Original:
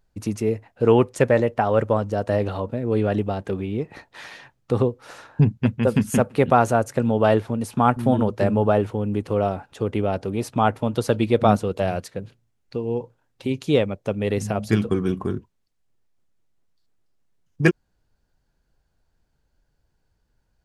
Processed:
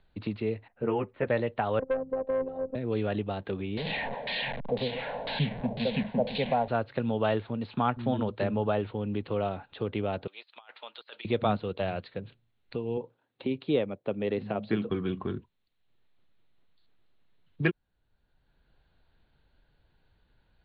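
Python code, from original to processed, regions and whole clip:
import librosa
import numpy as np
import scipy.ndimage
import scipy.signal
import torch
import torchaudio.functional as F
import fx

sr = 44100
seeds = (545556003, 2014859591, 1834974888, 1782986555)

y = fx.chain(x, sr, fx.lowpass(hz=2200.0, slope=24),
    fx.ensemble(), at=(0.68, 1.27))
y = fx.chain(y, sr, fx.robotise(hz=262.0),
    fx.lowpass_res(hz=560.0, q=2.3),
    fx.tube_stage(drive_db=12.0, bias=0.3), at=(1.79, 2.75))
y = fx.chain(y, sr, fx.delta_mod(bps=64000, step_db=-19.0),
    fx.fixed_phaser(hz=340.0, stages=6),
    fx.filter_lfo_lowpass(shape='saw_down', hz=2.0, low_hz=520.0, high_hz=7700.0, q=1.7), at=(3.77, 6.68))
y = fx.chain(y, sr, fx.highpass(hz=570.0, slope=12),
    fx.differentiator(),
    fx.over_compress(threshold_db=-45.0, ratio=-0.5), at=(10.27, 11.25))
y = fx.chain(y, sr, fx.highpass(hz=270.0, slope=12),
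    fx.tilt_eq(slope=-3.0), at=(12.97, 14.9))
y = scipy.signal.sosfilt(scipy.signal.butter(16, 4200.0, 'lowpass', fs=sr, output='sos'), y)
y = fx.high_shelf(y, sr, hz=2600.0, db=9.5)
y = fx.band_squash(y, sr, depth_pct=40)
y = F.gain(torch.from_numpy(y), -9.0).numpy()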